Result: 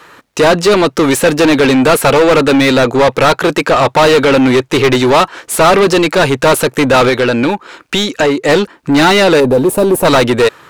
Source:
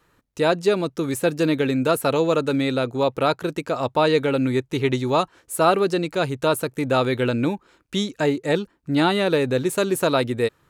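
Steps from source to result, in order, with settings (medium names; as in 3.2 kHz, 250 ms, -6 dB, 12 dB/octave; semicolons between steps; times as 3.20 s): 7.09–8.49 s: compression 2:1, threshold -30 dBFS, peak gain reduction 8 dB; overdrive pedal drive 28 dB, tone 3.9 kHz, clips at -6 dBFS; 9.40–10.05 s: high-order bell 3.1 kHz -13.5 dB 2.9 oct; trim +5 dB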